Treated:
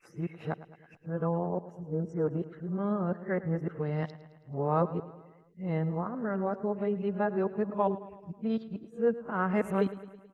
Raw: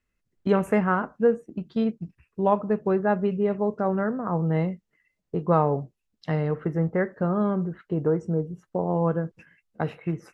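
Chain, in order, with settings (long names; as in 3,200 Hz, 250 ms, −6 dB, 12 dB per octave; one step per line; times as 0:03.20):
played backwards from end to start
repeating echo 108 ms, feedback 58%, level −16 dB
level −6.5 dB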